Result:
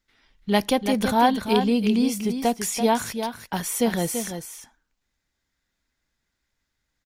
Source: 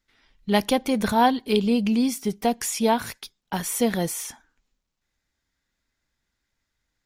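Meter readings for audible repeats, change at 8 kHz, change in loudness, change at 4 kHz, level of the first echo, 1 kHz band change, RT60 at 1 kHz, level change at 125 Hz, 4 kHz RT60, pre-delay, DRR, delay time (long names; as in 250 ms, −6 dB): 1, +0.5 dB, +0.5 dB, +0.5 dB, −8.0 dB, +0.5 dB, no reverb audible, +0.5 dB, no reverb audible, no reverb audible, no reverb audible, 336 ms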